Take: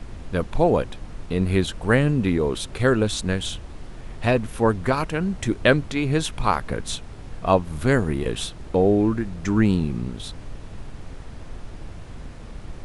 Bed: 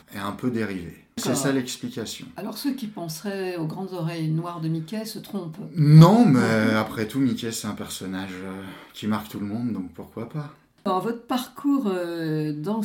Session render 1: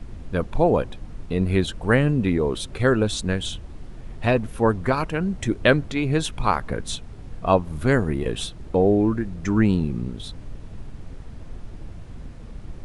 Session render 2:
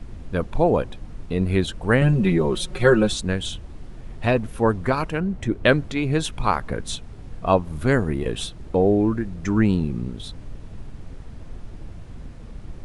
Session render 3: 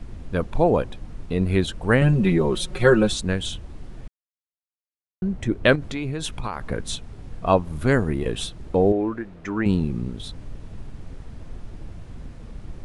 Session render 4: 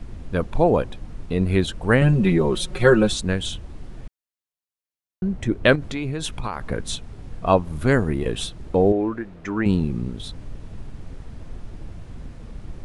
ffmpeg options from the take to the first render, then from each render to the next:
-af "afftdn=nr=6:nf=-39"
-filter_complex "[0:a]asettb=1/sr,asplit=3[s0][s1][s2];[s0]atrim=end=2.014[s3];[s1]atrim=start=2.01:end=3.13,asetpts=PTS-STARTPTS,afade=t=in:d=0.004:c=qsin,afade=t=out:st=1.116:d=0.004:c=qsin,aecho=1:1:5.5:0.98,atrim=end_sample=49392[s4];[s2]atrim=start=3.126[s5];[s3][s4]acrossfade=d=0.004:c1=hsin:c2=qsin[s6];[s6][s5]acrossfade=d=0.004:c1=qsin:c2=hsin,asettb=1/sr,asplit=3[s7][s8][s9];[s7]atrim=end=5.204[s10];[s8]atrim=start=5.2:end=5.65,asetpts=PTS-STARTPTS,afade=t=in:d=0.004:c=qsin,afade=t=out:st=0.446:d=0.004:c=qsin,highshelf=f=3400:g=-10[s11];[s9]atrim=start=5.646[s12];[s10][s11]acrossfade=d=0.004:c1=hsin:c2=qsin[s13];[s13][s12]acrossfade=d=0.004:c1=qsin:c2=hsin"
-filter_complex "[0:a]asettb=1/sr,asplit=3[s0][s1][s2];[s0]atrim=end=5.754[s3];[s1]atrim=start=5.75:end=6.61,asetpts=PTS-STARTPTS,afade=t=in:d=0.004:c=qsin,afade=t=out:st=0.856:d=0.004:c=qsin,acompressor=threshold=0.0708:ratio=12:attack=3.2:release=140:knee=1:detection=peak[s4];[s2]atrim=start=6.606[s5];[s3][s4]acrossfade=d=0.004:c1=hsin:c2=qsin[s6];[s6][s5]acrossfade=d=0.004:c1=qsin:c2=hsin,asettb=1/sr,asplit=3[s7][s8][s9];[s7]atrim=end=8.924[s10];[s8]atrim=start=8.92:end=9.66,asetpts=PTS-STARTPTS,afade=t=in:d=0.004:c=qsin,afade=t=out:st=0.736:d=0.004:c=qsin,bass=f=250:g=-13,treble=f=4000:g=-11[s11];[s9]atrim=start=9.656[s12];[s10][s11]acrossfade=d=0.004:c1=hsin:c2=qsin[s13];[s13][s12]acrossfade=d=0.004:c1=qsin:c2=hsin,asplit=3[s14][s15][s16];[s14]atrim=end=4.08,asetpts=PTS-STARTPTS,afade=t=out:st=4.076:d=0.004:c=hsin[s17];[s15]atrim=start=4.08:end=5.22,asetpts=PTS-STARTPTS,volume=0[s18];[s16]atrim=start=5.22,asetpts=PTS-STARTPTS,afade=t=in:d=0.004:c=hsin[s19];[s17][s18][s19]concat=n=3:v=0:a=1"
-af "volume=1.12"

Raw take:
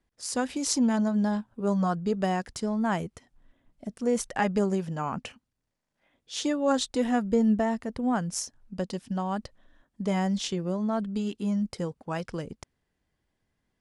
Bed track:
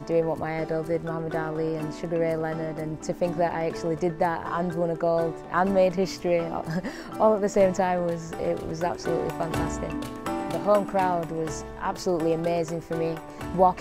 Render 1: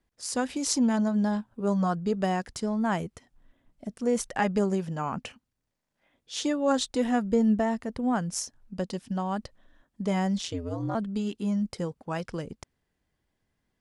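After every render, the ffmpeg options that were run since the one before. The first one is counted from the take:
-filter_complex "[0:a]asettb=1/sr,asplit=3[s0][s1][s2];[s0]atrim=end=10.414[s3];[s1]atrim=start=10.41:end=10.95,asetpts=PTS-STARTPTS,afade=t=in:d=0.004:c=qsin,afade=t=out:st=0.536:d=0.004:c=qsin,aeval=exprs='val(0)*sin(2*PI*85*n/s)':c=same[s4];[s2]atrim=start=10.946[s5];[s3][s4]acrossfade=d=0.004:c1=hsin:c2=qsin[s6];[s6][s5]acrossfade=d=0.004:c1=qsin:c2=hsin"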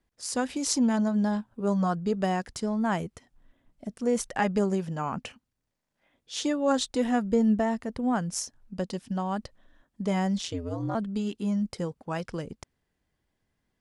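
-af anull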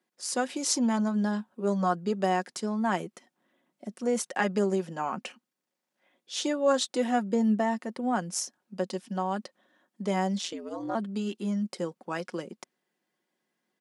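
-af "highpass=f=220:w=0.5412,highpass=f=220:w=1.3066,aecho=1:1:5.5:0.4"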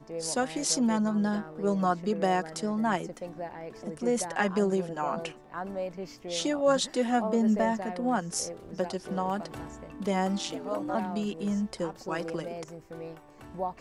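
-filter_complex "[1:a]volume=0.211[s0];[0:a][s0]amix=inputs=2:normalize=0"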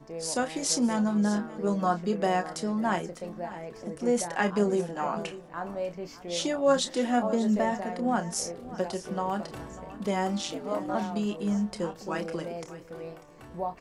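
-filter_complex "[0:a]asplit=2[s0][s1];[s1]adelay=29,volume=0.335[s2];[s0][s2]amix=inputs=2:normalize=0,aecho=1:1:594:0.15"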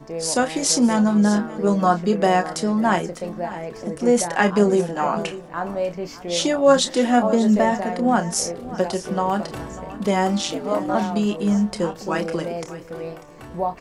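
-af "volume=2.66,alimiter=limit=0.708:level=0:latency=1"

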